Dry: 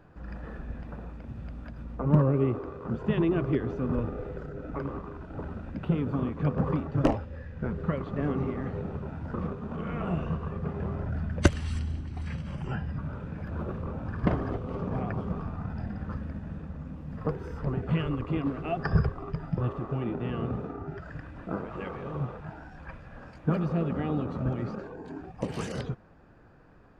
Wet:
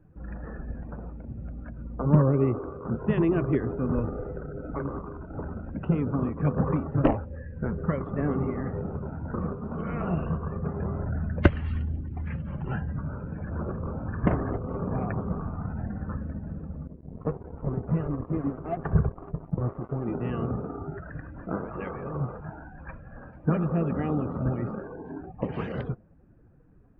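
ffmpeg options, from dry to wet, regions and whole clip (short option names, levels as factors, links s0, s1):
-filter_complex "[0:a]asettb=1/sr,asplit=3[s0][s1][s2];[s0]atrim=end=16.874[s3];[s1]atrim=start=16.87:end=20.08,asetpts=PTS-STARTPTS,afade=t=in:d=0.004:c=qsin,afade=t=out:st=3.206:d=0.004:c=qsin,lowpass=1100,aeval=exprs='sgn(val(0))*max(abs(val(0))-0.00841,0)':c=same[s4];[s2]atrim=start=20.076[s5];[s3][s4]acrossfade=d=0.004:c1=hsin:c2=qsin[s6];[s6][s5]acrossfade=d=0.004:c1=qsin:c2=hsin,afftdn=nr=16:nf=-49,lowpass=f=2700:w=0.5412,lowpass=f=2700:w=1.3066,volume=1.26"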